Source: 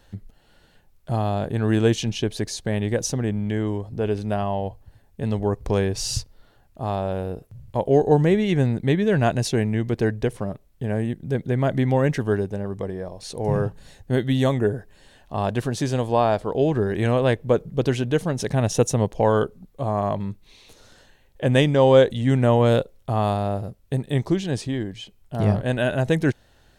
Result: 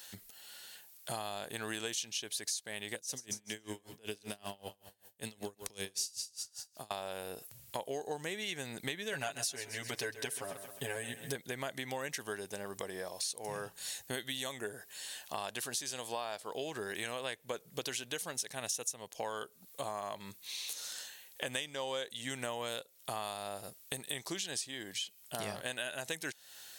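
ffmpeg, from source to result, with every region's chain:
-filter_complex "[0:a]asettb=1/sr,asplit=3[s0][s1][s2];[s0]atrim=end=2.954[s3];[s1]atrim=start=2.95:end=6.91,asetpts=PTS-STARTPTS,afade=t=in:d=0.004:c=qsin,afade=t=out:st=3.956:d=0.004:c=qsin,acrossover=split=410|3000[s4][s5][s6];[s5]acompressor=threshold=0.01:ratio=2.5:attack=3.2:release=140:knee=2.83:detection=peak[s7];[s4][s7][s6]amix=inputs=3:normalize=0,aecho=1:1:140|280|420|560:0.237|0.107|0.048|0.0216,atrim=end_sample=174636,aeval=exprs='val(0)*pow(10,-29*(0.5-0.5*cos(2*PI*5.2*n/s))/20)':c=same[s8];[s2]atrim=start=6.906[s9];[s3][s8]acrossfade=d=0.004:c1=hsin:c2=qsin[s10];[s10][s9]acrossfade=d=0.004:c1=qsin:c2=hsin,asettb=1/sr,asplit=3[s11][s12][s13];[s11]atrim=end=9.124[s14];[s12]atrim=start=9.12:end=11.36,asetpts=PTS-STARTPTS,afade=t=in:d=0.004:c=qsin,afade=t=out:st=2.236:d=0.004:c=qsin,aecho=1:1:7.2:0.92,atrim=end_sample=98784,aecho=1:1:132|264|396|528:0.178|0.0765|0.0329|0.0141,atrim=end_sample=98784[s15];[s13]atrim=start=11.356[s16];[s14][s15]acrossfade=d=0.004:c1=hsin:c2=qsin[s17];[s17][s16]acrossfade=d=0.004:c1=qsin:c2=hsin,aderivative,acompressor=threshold=0.00224:ratio=6,volume=6.68"

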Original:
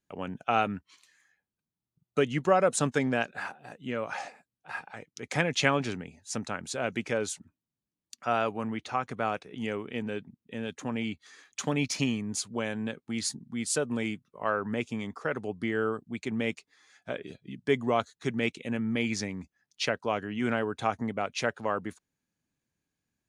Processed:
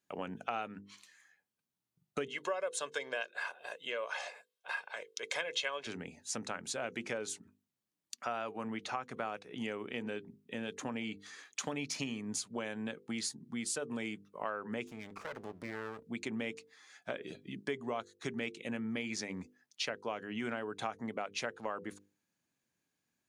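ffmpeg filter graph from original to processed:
-filter_complex "[0:a]asettb=1/sr,asplit=3[s0][s1][s2];[s0]atrim=end=2.284[s3];[s1]atrim=start=2.28:end=5.87,asetpts=PTS-STARTPTS,afade=t=in:d=0.004:c=qsin,afade=t=out:st=3.586:d=0.004:c=qsin,highpass=440,equalizer=f=3400:w=2.4:g=7.5,aecho=1:1:1.9:0.61,atrim=end_sample=158319[s4];[s2]atrim=start=5.866[s5];[s3][s4]acrossfade=d=0.004:c1=hsin:c2=qsin[s6];[s6][s5]acrossfade=d=0.004:c1=qsin:c2=hsin,asettb=1/sr,asplit=3[s7][s8][s9];[s7]atrim=end=14.874[s10];[s8]atrim=start=14.87:end=16.03,asetpts=PTS-STARTPTS,afade=t=in:d=0.004:c=qsin,afade=t=out:st=1.156:d=0.004:c=qsin,acompressor=threshold=0.0126:ratio=2:attack=3.2:release=140:knee=1:detection=peak,aeval=exprs='max(val(0),0)':c=same[s11];[s9]atrim=start=16.026[s12];[s10][s11]acrossfade=d=0.004:c1=hsin:c2=qsin[s13];[s13][s12]acrossfade=d=0.004:c1=qsin:c2=hsin,highpass=f=230:p=1,bandreject=f=50:t=h:w=6,bandreject=f=100:t=h:w=6,bandreject=f=150:t=h:w=6,bandreject=f=200:t=h:w=6,bandreject=f=250:t=h:w=6,bandreject=f=300:t=h:w=6,bandreject=f=350:t=h:w=6,bandreject=f=400:t=h:w=6,bandreject=f=450:t=h:w=6,bandreject=f=500:t=h:w=6,acompressor=threshold=0.0126:ratio=4,volume=1.26"

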